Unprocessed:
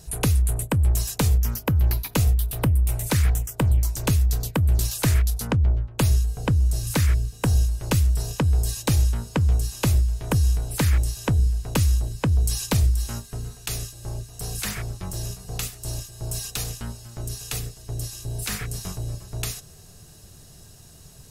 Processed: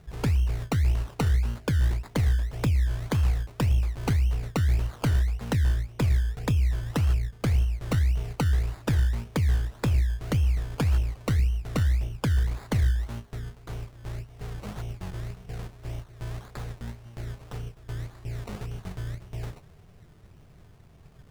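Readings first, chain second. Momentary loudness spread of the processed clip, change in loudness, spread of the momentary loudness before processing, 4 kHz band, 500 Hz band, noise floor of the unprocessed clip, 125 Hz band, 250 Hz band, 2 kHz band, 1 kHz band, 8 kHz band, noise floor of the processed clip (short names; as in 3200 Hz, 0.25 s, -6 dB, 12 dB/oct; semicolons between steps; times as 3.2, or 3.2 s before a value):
13 LU, -3.5 dB, 11 LU, -8.5 dB, -4.0 dB, -47 dBFS, -3.5 dB, -3.5 dB, -4.5 dB, -4.5 dB, -15.5 dB, -52 dBFS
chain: median filter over 15 samples; decimation with a swept rate 21×, swing 60% 1.8 Hz; Doppler distortion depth 0.26 ms; gain -3.5 dB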